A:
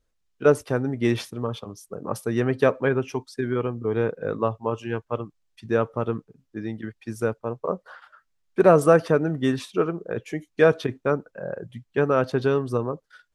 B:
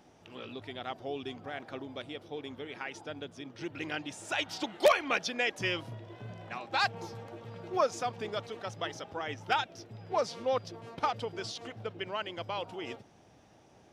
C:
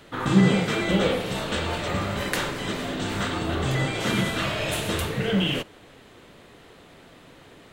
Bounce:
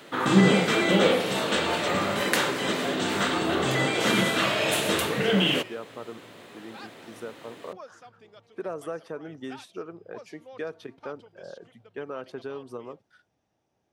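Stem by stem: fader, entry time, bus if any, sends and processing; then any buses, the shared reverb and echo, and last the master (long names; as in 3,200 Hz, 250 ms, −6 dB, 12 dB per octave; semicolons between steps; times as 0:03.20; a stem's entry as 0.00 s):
−10.0 dB, 0.00 s, no send, high-pass filter 230 Hz 12 dB per octave; downward compressor 2.5 to 1, threshold −24 dBFS, peak gain reduction 9.5 dB
−16.5 dB, 0.00 s, no send, no processing
+3.0 dB, 0.00 s, no send, high-pass filter 210 Hz 12 dB per octave; bit reduction 12 bits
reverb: not used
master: no processing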